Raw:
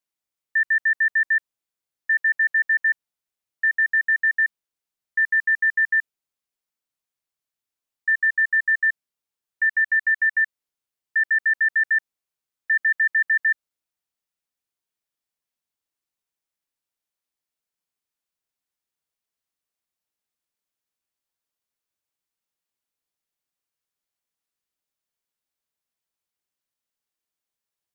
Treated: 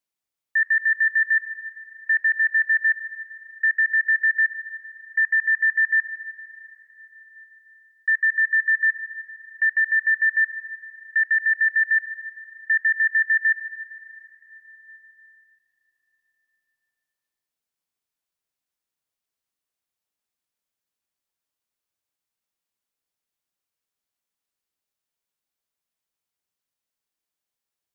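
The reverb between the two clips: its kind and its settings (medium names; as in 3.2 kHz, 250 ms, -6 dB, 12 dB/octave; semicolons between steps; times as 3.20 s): plate-style reverb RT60 4.3 s, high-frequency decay 0.9×, DRR 10.5 dB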